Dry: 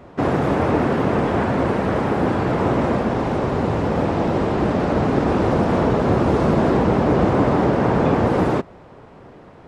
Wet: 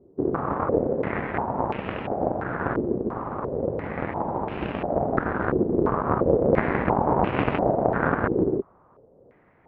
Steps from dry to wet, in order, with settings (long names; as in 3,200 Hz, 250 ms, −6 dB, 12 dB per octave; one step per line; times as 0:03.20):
harmonic generator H 3 −11 dB, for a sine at −4.5 dBFS
high-frequency loss of the air 120 metres
low-pass on a step sequencer 2.9 Hz 390–2,700 Hz